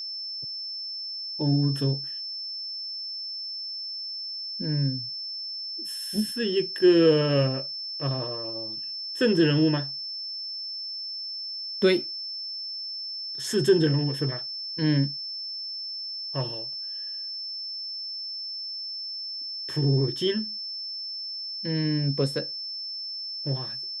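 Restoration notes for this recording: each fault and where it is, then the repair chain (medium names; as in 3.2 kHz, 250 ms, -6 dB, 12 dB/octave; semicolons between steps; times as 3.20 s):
whine 5.3 kHz -32 dBFS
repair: band-stop 5.3 kHz, Q 30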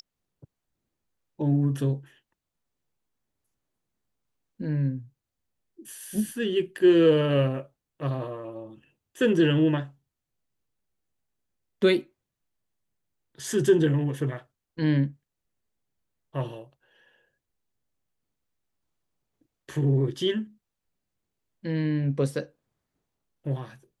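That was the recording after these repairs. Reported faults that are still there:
nothing left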